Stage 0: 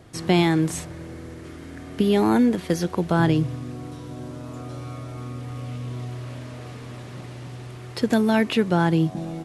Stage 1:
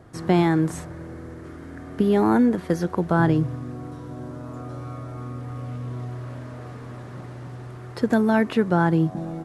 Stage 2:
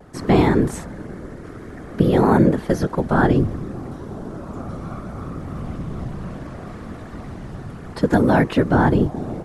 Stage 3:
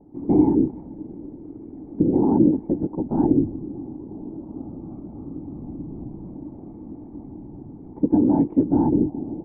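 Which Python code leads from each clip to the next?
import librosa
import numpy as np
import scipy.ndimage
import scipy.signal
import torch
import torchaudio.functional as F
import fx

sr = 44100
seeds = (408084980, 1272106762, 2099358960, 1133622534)

y1 = fx.high_shelf_res(x, sr, hz=2000.0, db=-7.0, q=1.5)
y2 = fx.whisperise(y1, sr, seeds[0])
y2 = fx.vibrato(y2, sr, rate_hz=0.6, depth_cents=21.0)
y2 = y2 * 10.0 ** (3.5 / 20.0)
y3 = fx.formant_cascade(y2, sr, vowel='u')
y3 = y3 * 10.0 ** (4.5 / 20.0)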